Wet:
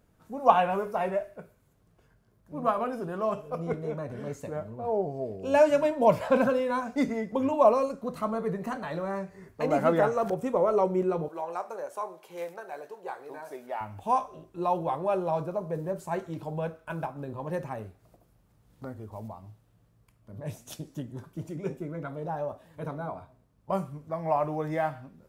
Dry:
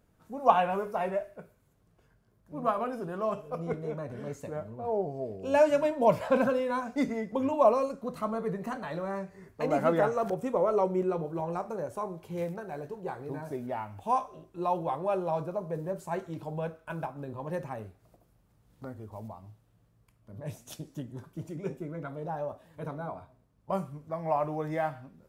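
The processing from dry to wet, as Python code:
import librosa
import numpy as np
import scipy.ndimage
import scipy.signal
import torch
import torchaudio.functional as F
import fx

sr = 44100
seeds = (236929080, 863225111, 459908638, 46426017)

y = fx.highpass(x, sr, hz=550.0, slope=12, at=(11.28, 13.81))
y = F.gain(torch.from_numpy(y), 2.0).numpy()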